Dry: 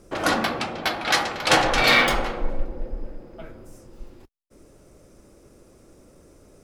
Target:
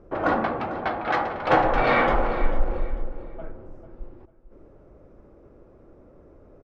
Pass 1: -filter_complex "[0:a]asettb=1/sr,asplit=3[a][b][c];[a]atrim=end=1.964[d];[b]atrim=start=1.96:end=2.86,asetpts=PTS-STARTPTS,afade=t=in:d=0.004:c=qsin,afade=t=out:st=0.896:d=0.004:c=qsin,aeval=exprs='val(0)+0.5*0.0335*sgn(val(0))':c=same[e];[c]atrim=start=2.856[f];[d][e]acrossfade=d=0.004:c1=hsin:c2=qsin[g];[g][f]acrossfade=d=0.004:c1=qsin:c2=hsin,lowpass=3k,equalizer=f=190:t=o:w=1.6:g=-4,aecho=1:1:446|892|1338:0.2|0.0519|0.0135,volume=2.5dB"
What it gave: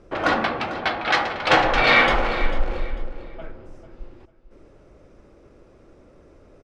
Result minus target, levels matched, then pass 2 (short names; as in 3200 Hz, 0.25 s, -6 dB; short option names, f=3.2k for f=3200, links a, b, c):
4000 Hz band +10.0 dB
-filter_complex "[0:a]asettb=1/sr,asplit=3[a][b][c];[a]atrim=end=1.964[d];[b]atrim=start=1.96:end=2.86,asetpts=PTS-STARTPTS,afade=t=in:d=0.004:c=qsin,afade=t=out:st=0.896:d=0.004:c=qsin,aeval=exprs='val(0)+0.5*0.0335*sgn(val(0))':c=same[e];[c]atrim=start=2.856[f];[d][e]acrossfade=d=0.004:c1=hsin:c2=qsin[g];[g][f]acrossfade=d=0.004:c1=qsin:c2=hsin,lowpass=1.2k,equalizer=f=190:t=o:w=1.6:g=-4,aecho=1:1:446|892|1338:0.2|0.0519|0.0135,volume=2.5dB"